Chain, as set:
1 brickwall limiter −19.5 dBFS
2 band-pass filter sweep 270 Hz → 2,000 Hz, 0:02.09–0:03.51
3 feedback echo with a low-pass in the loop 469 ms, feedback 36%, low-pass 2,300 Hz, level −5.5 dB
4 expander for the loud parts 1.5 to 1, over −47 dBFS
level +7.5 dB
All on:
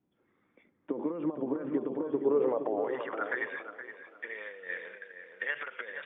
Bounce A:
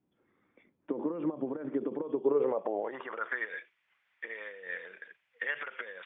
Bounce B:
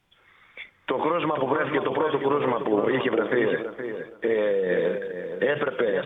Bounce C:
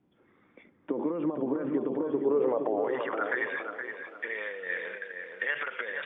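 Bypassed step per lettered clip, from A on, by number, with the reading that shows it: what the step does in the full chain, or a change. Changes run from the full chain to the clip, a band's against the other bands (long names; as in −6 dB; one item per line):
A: 3, change in momentary loudness spread −2 LU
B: 2, 125 Hz band +6.5 dB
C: 4, change in crest factor −2.5 dB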